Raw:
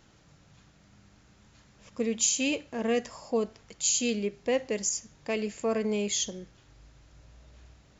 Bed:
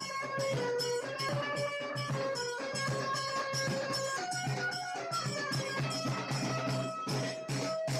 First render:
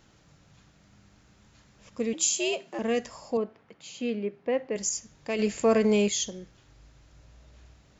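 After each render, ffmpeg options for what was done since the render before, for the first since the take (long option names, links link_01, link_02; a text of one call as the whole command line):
ffmpeg -i in.wav -filter_complex "[0:a]asettb=1/sr,asplit=3[link_01][link_02][link_03];[link_01]atrim=end=2.134[link_04];[link_02]atrim=start=2.13:end=2.79,asetpts=PTS-STARTPTS,afade=type=in:duration=0.004:curve=qsin,afade=type=out:start_time=0.656:duration=0.004:curve=qsin,afreqshift=98[link_05];[link_03]atrim=start=2.786[link_06];[link_04][link_05]acrossfade=duration=0.004:curve1=hsin:curve2=qsin[link_07];[link_07][link_06]acrossfade=duration=0.004:curve1=qsin:curve2=hsin,asettb=1/sr,asplit=3[link_08][link_09][link_10];[link_08]atrim=end=3.374[link_11];[link_09]atrim=start=3.37:end=4.76,asetpts=PTS-STARTPTS,afade=type=in:duration=0.004:curve=qsin,afade=type=out:start_time=1.386:duration=0.004:curve=qsin,highpass=160,lowpass=2000[link_12];[link_10]atrim=start=4.756[link_13];[link_11][link_12]acrossfade=duration=0.004:curve1=hsin:curve2=qsin[link_14];[link_14][link_13]acrossfade=duration=0.004:curve1=qsin:curve2=hsin,asplit=3[link_15][link_16][link_17];[link_15]afade=type=out:start_time=5.38:duration=0.02[link_18];[link_16]acontrast=68,afade=type=in:start_time=5.38:duration=0.02,afade=type=out:start_time=6.08:duration=0.02[link_19];[link_17]afade=type=in:start_time=6.08:duration=0.02[link_20];[link_18][link_19][link_20]amix=inputs=3:normalize=0" out.wav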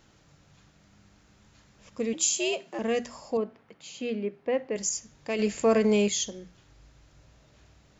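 ffmpeg -i in.wav -af "bandreject=frequency=60:width_type=h:width=6,bandreject=frequency=120:width_type=h:width=6,bandreject=frequency=180:width_type=h:width=6,bandreject=frequency=240:width_type=h:width=6" out.wav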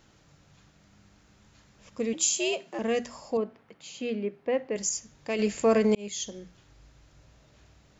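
ffmpeg -i in.wav -filter_complex "[0:a]asplit=2[link_01][link_02];[link_01]atrim=end=5.95,asetpts=PTS-STARTPTS,afade=type=out:start_time=5.946:duration=0.004:curve=hsin[link_03];[link_02]atrim=start=5.95,asetpts=PTS-STARTPTS,afade=type=in:duration=0.43[link_04];[link_03][link_04]concat=n=2:v=0:a=1" out.wav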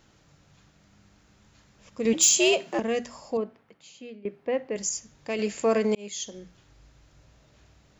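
ffmpeg -i in.wav -filter_complex "[0:a]asettb=1/sr,asplit=3[link_01][link_02][link_03];[link_01]atrim=end=2.054[link_04];[link_02]atrim=start=2.05:end=2.8,asetpts=PTS-STARTPTS,afade=type=in:duration=0.004:curve=qsin,afade=type=out:start_time=0.746:duration=0.004:curve=qsin,aeval=exprs='0.251*sin(PI/2*1.58*val(0)/0.251)':channel_layout=same[link_05];[link_03]atrim=start=2.796[link_06];[link_04][link_05]acrossfade=duration=0.004:curve1=hsin:curve2=qsin[link_07];[link_07][link_06]acrossfade=duration=0.004:curve1=qsin:curve2=hsin,asettb=1/sr,asplit=3[link_08][link_09][link_10];[link_08]atrim=end=5.394[link_11];[link_09]atrim=start=5.39:end=6.34,asetpts=PTS-STARTPTS,afade=type=in:duration=0.004:curve=qsin,afade=type=out:start_time=0.946:duration=0.004:curve=qsin,lowshelf=frequency=130:gain=-10[link_12];[link_10]atrim=start=6.336[link_13];[link_11][link_12]acrossfade=duration=0.004:curve1=hsin:curve2=qsin[link_14];[link_14][link_13]acrossfade=duration=0.004:curve1=qsin:curve2=hsin,asplit=2[link_15][link_16];[link_15]atrim=end=4.25,asetpts=PTS-STARTPTS,afade=type=out:start_time=3.39:duration=0.86:silence=0.125893[link_17];[link_16]atrim=start=4.25,asetpts=PTS-STARTPTS,afade=type=in:duration=0.004:curve=hsin:silence=0.125893[link_18];[link_17][link_18]concat=n=2:v=0:a=1" out.wav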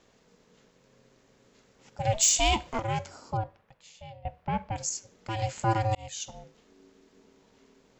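ffmpeg -i in.wav -af "aeval=exprs='val(0)*sin(2*PI*330*n/s)':channel_layout=same" out.wav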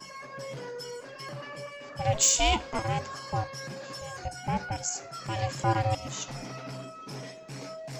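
ffmpeg -i in.wav -i bed.wav -filter_complex "[1:a]volume=-6dB[link_01];[0:a][link_01]amix=inputs=2:normalize=0" out.wav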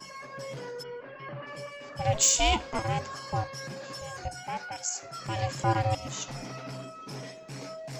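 ffmpeg -i in.wav -filter_complex "[0:a]asplit=3[link_01][link_02][link_03];[link_01]afade=type=out:start_time=0.82:duration=0.02[link_04];[link_02]lowpass=frequency=2800:width=0.5412,lowpass=frequency=2800:width=1.3066,afade=type=in:start_time=0.82:duration=0.02,afade=type=out:start_time=1.46:duration=0.02[link_05];[link_03]afade=type=in:start_time=1.46:duration=0.02[link_06];[link_04][link_05][link_06]amix=inputs=3:normalize=0,asettb=1/sr,asplit=3[link_07][link_08][link_09];[link_07]atrim=end=4.434[link_10];[link_08]atrim=start=4.43:end=5.03,asetpts=PTS-STARTPTS,afade=type=in:duration=0.004:curve=qsin,afade=type=out:start_time=0.596:duration=0.004:curve=qsin,highpass=frequency=810:poles=1[link_11];[link_09]atrim=start=5.026[link_12];[link_10][link_11]acrossfade=duration=0.004:curve1=hsin:curve2=qsin[link_13];[link_13][link_12]acrossfade=duration=0.004:curve1=qsin:curve2=hsin" out.wav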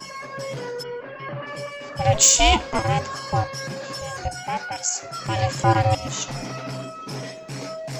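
ffmpeg -i in.wav -af "volume=8dB" out.wav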